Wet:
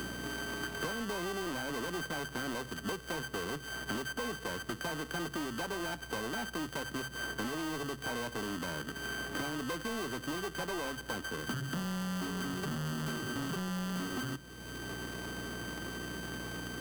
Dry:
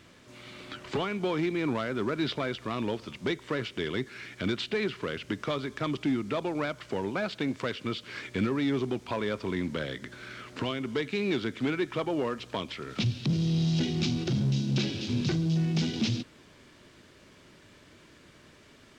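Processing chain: sorted samples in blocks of 32 samples; hum notches 60/120 Hz; tape speed +13%; saturation -31.5 dBFS, distortion -9 dB; hum 60 Hz, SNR 19 dB; three bands compressed up and down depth 100%; trim -2 dB

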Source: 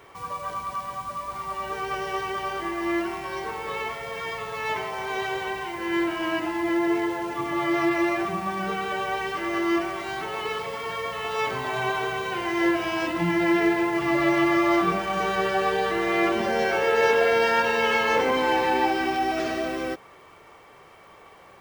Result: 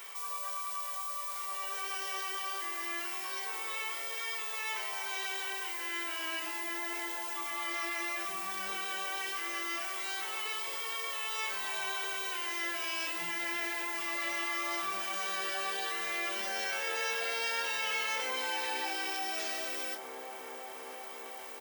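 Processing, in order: differentiator; band-stop 4.4 kHz, Q 30; doubling 31 ms -11 dB; on a send: feedback echo behind a low-pass 358 ms, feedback 84%, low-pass 810 Hz, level -14.5 dB; on the sum: level flattener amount 50%

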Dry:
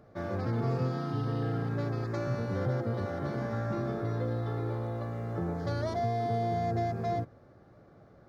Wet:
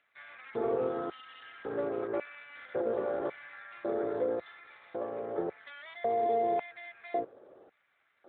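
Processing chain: LFO high-pass square 0.91 Hz 430–2300 Hz; AMR-NB 12.2 kbps 8 kHz

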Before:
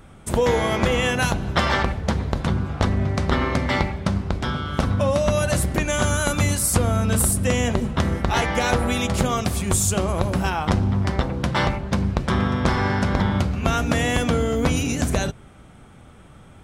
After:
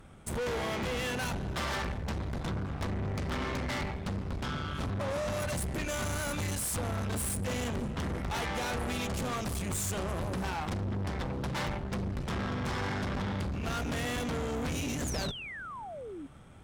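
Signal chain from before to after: valve stage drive 28 dB, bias 0.7; painted sound fall, 15.04–16.27 s, 260–7300 Hz -39 dBFS; trim -3 dB

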